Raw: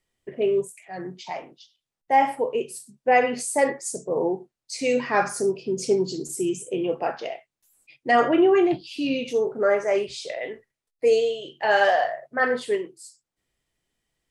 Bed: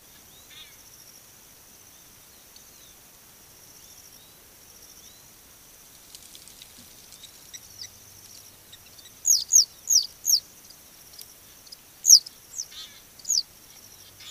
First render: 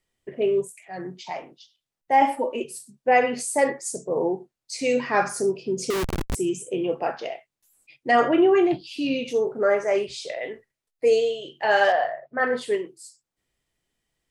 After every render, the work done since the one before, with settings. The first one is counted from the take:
0:02.21–0:02.64: comb filter 3.4 ms, depth 84%
0:05.90–0:06.35: comparator with hysteresis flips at −24.5 dBFS
0:11.92–0:12.53: high-frequency loss of the air 210 metres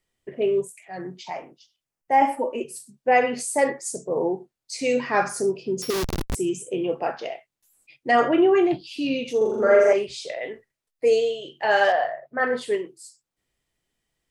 0:01.30–0:02.76: parametric band 3,700 Hz −8.5 dB 0.62 octaves
0:05.82–0:06.28: samples sorted by size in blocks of 8 samples
0:09.37–0:09.93: flutter between parallel walls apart 7.1 metres, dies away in 1.2 s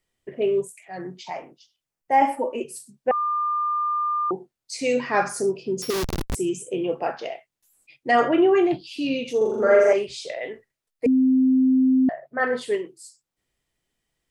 0:03.11–0:04.31: beep over 1,200 Hz −21 dBFS
0:11.06–0:12.09: beep over 260 Hz −14.5 dBFS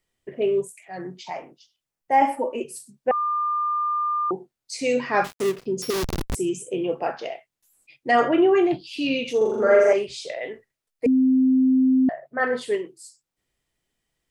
0:05.24–0:05.66: gap after every zero crossing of 0.25 ms
0:08.93–0:09.63: parametric band 2,100 Hz +5 dB 2.2 octaves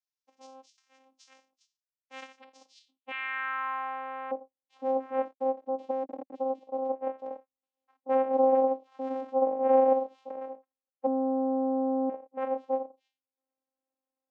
channel vocoder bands 4, saw 264 Hz
band-pass filter sweep 5,700 Hz → 620 Hz, 0:02.64–0:04.04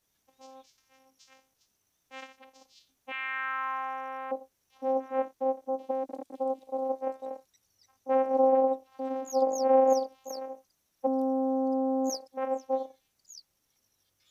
mix in bed −25.5 dB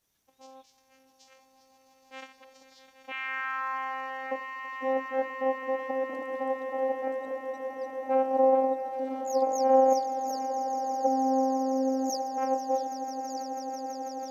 echo that builds up and dies away 164 ms, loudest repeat 8, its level −13.5 dB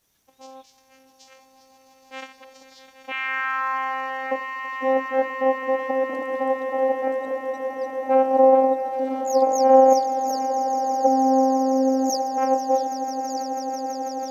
level +7.5 dB

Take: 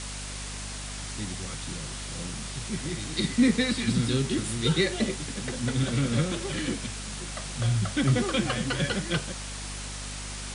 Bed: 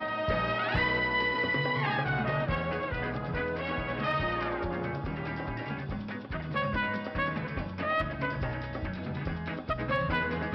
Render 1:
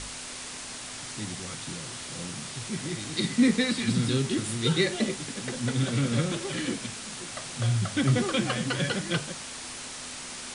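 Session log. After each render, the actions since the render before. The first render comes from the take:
hum removal 50 Hz, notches 4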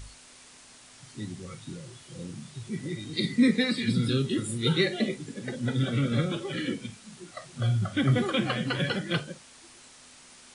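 noise reduction from a noise print 13 dB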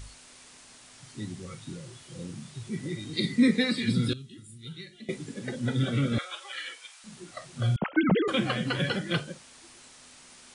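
0:04.13–0:05.09: guitar amp tone stack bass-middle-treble 6-0-2
0:06.18–0:07.04: high-pass filter 790 Hz 24 dB per octave
0:07.76–0:08.28: three sine waves on the formant tracks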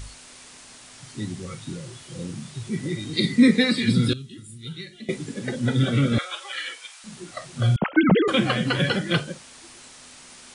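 level +6 dB

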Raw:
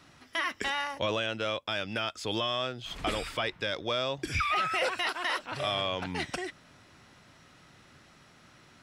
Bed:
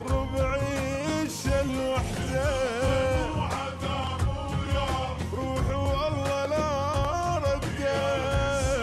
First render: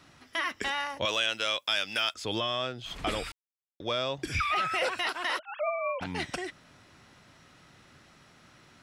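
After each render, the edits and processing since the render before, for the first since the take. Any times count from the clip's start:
0:01.05–0:02.14: spectral tilt +4 dB per octave
0:03.32–0:03.80: silence
0:05.39–0:06.01: three sine waves on the formant tracks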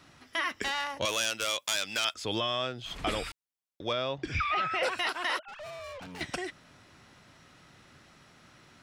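0:00.62–0:02.05: phase distortion by the signal itself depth 0.098 ms
0:03.93–0:04.83: high-frequency loss of the air 130 metres
0:05.48–0:06.21: tube saturation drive 41 dB, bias 0.4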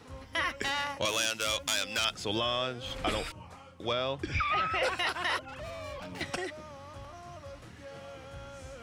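mix in bed −20 dB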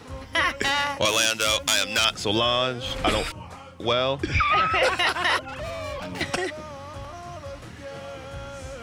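level +8.5 dB

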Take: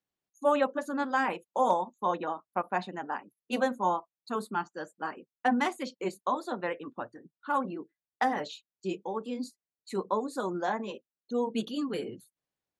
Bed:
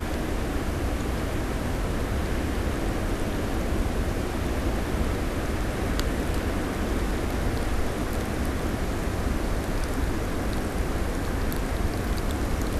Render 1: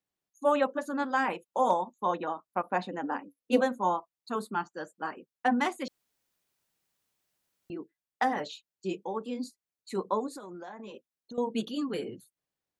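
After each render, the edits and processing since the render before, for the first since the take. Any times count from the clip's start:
0:02.69–0:03.61: hollow resonant body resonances 280/500 Hz, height 13 dB, ringing for 90 ms
0:05.88–0:07.70: fill with room tone
0:10.28–0:11.38: downward compressor 12 to 1, threshold −39 dBFS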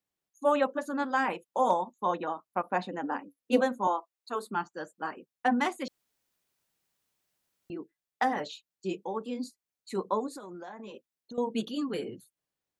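0:03.87–0:04.46: high-pass filter 290 Hz 24 dB per octave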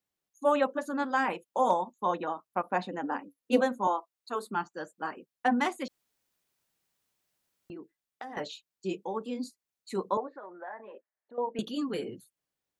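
0:05.86–0:08.37: downward compressor, threshold −39 dBFS
0:10.17–0:11.59: loudspeaker in its box 460–2,000 Hz, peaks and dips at 610 Hz +6 dB, 880 Hz +3 dB, 1,800 Hz +9 dB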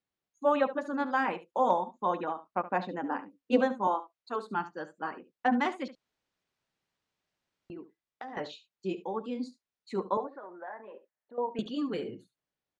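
high-frequency loss of the air 120 metres
single-tap delay 71 ms −15 dB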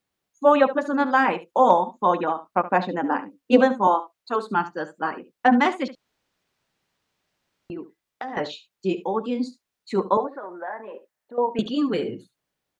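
level +9.5 dB
brickwall limiter −3 dBFS, peak gain reduction 1 dB

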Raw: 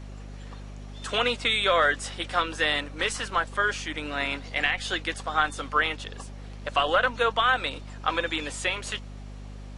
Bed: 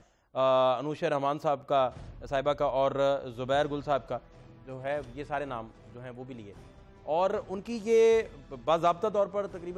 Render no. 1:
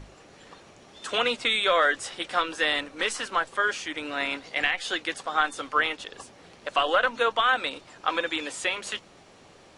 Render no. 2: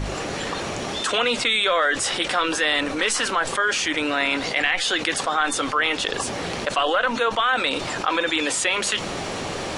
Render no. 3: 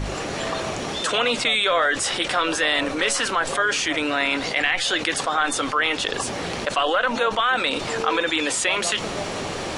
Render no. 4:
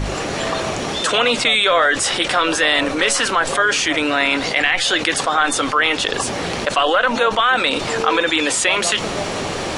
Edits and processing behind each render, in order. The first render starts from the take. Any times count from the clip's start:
mains-hum notches 50/100/150/200/250 Hz
envelope flattener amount 70%
mix in bed −8 dB
level +5 dB; brickwall limiter −3 dBFS, peak gain reduction 1 dB

